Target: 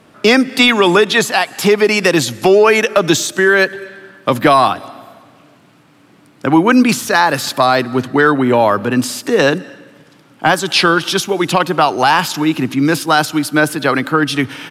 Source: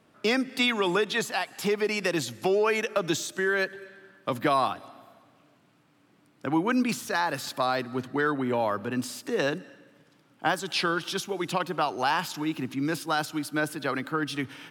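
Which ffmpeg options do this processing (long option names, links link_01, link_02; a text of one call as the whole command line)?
ffmpeg -i in.wav -af "apsyclip=16.5dB,aresample=32000,aresample=44100,volume=-1.5dB" out.wav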